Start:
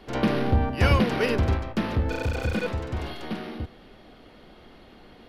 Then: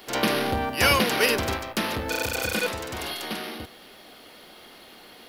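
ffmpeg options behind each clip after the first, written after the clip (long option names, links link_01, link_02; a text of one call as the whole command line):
ffmpeg -i in.wav -af "aemphasis=mode=production:type=riaa,volume=3.5dB" out.wav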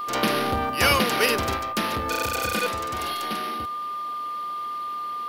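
ffmpeg -i in.wav -af "aeval=exprs='val(0)+0.0398*sin(2*PI*1200*n/s)':channel_layout=same" out.wav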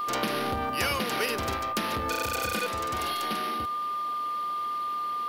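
ffmpeg -i in.wav -af "acompressor=threshold=-26dB:ratio=4" out.wav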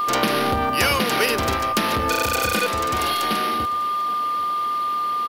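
ffmpeg -i in.wav -af "aecho=1:1:793:0.0944,volume=8.5dB" out.wav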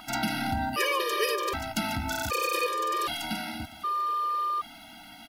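ffmpeg -i in.wav -af "afftfilt=real='re*gt(sin(2*PI*0.65*pts/sr)*(1-2*mod(floor(b*sr/1024/320),2)),0)':imag='im*gt(sin(2*PI*0.65*pts/sr)*(1-2*mod(floor(b*sr/1024/320),2)),0)':win_size=1024:overlap=0.75,volume=-5dB" out.wav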